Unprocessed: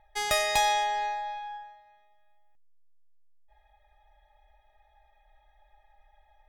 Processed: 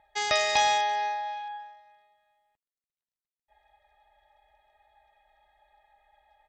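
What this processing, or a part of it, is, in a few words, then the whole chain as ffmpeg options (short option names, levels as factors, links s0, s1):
Bluetooth headset: -af "highpass=f=180:p=1,aresample=16000,aresample=44100,volume=1.19" -ar 32000 -c:a sbc -b:a 64k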